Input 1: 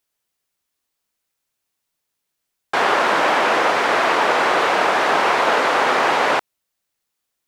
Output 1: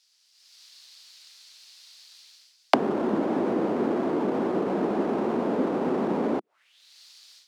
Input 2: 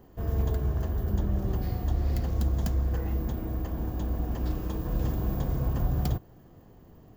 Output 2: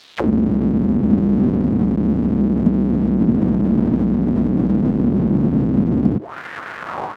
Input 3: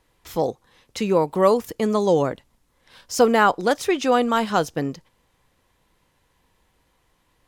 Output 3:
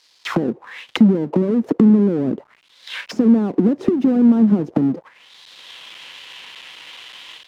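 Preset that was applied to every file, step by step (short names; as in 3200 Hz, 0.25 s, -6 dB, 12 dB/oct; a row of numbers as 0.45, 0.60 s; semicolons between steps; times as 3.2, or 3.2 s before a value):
half-waves squared off; HPF 100 Hz 6 dB/oct; dynamic EQ 360 Hz, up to +6 dB, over -34 dBFS, Q 2.6; AGC gain up to 16 dB; limiter -11 dBFS; compressor 6:1, threshold -27 dBFS; auto-wah 220–4900 Hz, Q 3.3, down, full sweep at -27 dBFS; normalise peaks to -2 dBFS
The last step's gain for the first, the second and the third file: +17.5, +24.0, +20.5 dB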